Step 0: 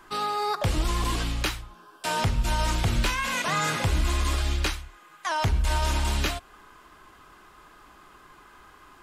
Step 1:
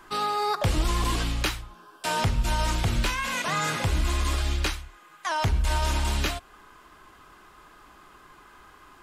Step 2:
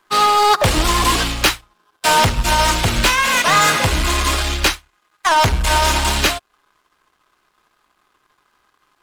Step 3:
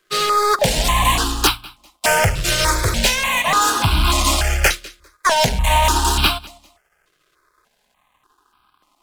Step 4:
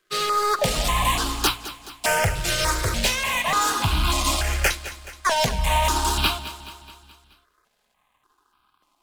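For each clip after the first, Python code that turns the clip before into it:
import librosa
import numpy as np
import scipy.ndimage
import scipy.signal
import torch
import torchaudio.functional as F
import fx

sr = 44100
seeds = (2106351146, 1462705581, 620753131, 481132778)

y1 = fx.rider(x, sr, range_db=10, speed_s=2.0)
y2 = fx.low_shelf(y1, sr, hz=260.0, db=-10.0)
y2 = fx.leveller(y2, sr, passes=3)
y2 = fx.upward_expand(y2, sr, threshold_db=-36.0, expansion=2.5)
y2 = y2 * librosa.db_to_amplitude(9.0)
y3 = fx.rider(y2, sr, range_db=10, speed_s=0.5)
y3 = fx.echo_feedback(y3, sr, ms=199, feedback_pct=25, wet_db=-23.0)
y3 = fx.phaser_held(y3, sr, hz=3.4, low_hz=240.0, high_hz=1900.0)
y3 = y3 * librosa.db_to_amplitude(2.0)
y4 = fx.echo_feedback(y3, sr, ms=213, feedback_pct=55, wet_db=-14.5)
y4 = y4 * librosa.db_to_amplitude(-5.5)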